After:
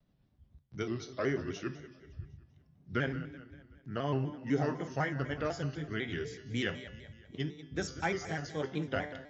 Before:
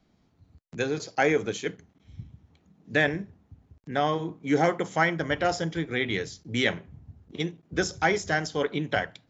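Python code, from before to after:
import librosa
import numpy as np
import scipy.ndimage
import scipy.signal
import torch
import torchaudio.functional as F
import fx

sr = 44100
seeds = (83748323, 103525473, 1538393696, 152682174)

p1 = fx.pitch_glide(x, sr, semitones=-3.5, runs='ending unshifted')
p2 = fx.low_shelf(p1, sr, hz=210.0, db=8.0)
p3 = fx.comb_fb(p2, sr, f0_hz=140.0, decay_s=0.99, harmonics='all', damping=0.0, mix_pct=70)
p4 = p3 + fx.echo_feedback(p3, sr, ms=189, feedback_pct=50, wet_db=-15.0, dry=0)
y = fx.vibrato_shape(p4, sr, shape='square', rate_hz=4.0, depth_cents=100.0)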